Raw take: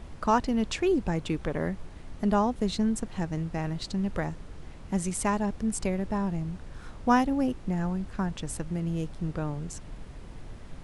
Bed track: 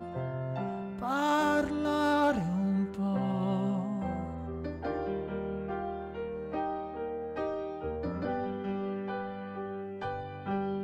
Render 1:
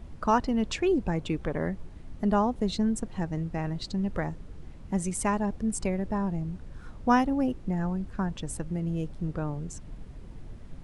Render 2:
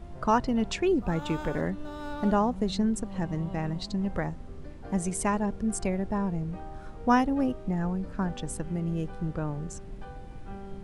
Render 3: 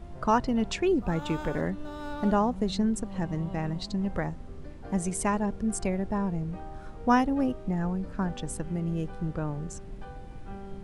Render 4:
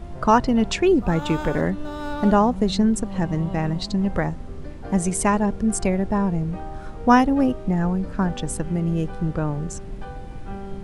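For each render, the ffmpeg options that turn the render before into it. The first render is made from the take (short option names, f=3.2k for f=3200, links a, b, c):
-af "afftdn=nr=7:nf=-45"
-filter_complex "[1:a]volume=-11dB[a];[0:a][a]amix=inputs=2:normalize=0"
-af anull
-af "volume=7.5dB"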